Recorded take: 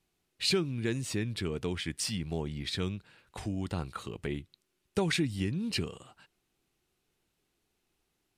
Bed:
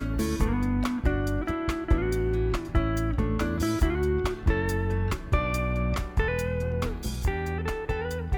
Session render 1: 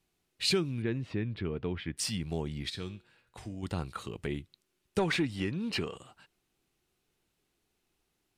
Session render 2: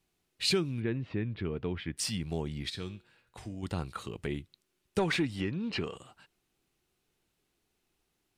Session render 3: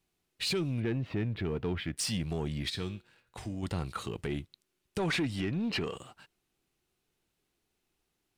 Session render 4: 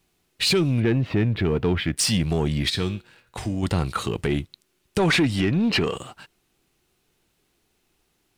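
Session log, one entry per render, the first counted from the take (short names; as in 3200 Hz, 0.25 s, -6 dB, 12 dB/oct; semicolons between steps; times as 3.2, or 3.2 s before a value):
0.82–1.97 air absorption 360 m; 2.7–3.63 resonator 120 Hz, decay 0.43 s; 4.99–5.96 overdrive pedal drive 13 dB, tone 1800 Hz, clips at -17 dBFS
0.8–1.39 LPF 3600 Hz; 5.41–5.84 air absorption 100 m
limiter -24.5 dBFS, peak gain reduction 8.5 dB; sample leveller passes 1
gain +11 dB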